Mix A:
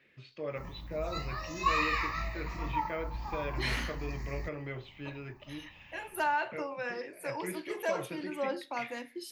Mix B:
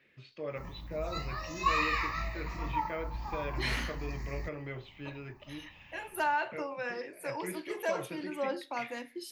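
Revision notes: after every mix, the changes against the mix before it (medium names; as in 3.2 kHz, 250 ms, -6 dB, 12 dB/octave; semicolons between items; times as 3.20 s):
first voice: send off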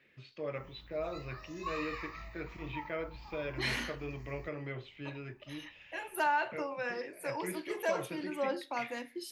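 background -11.5 dB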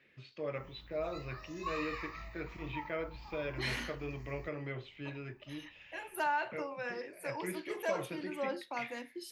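reverb: off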